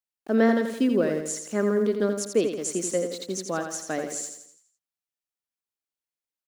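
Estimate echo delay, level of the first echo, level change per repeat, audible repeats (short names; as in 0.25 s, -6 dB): 84 ms, -7.0 dB, -6.5 dB, 5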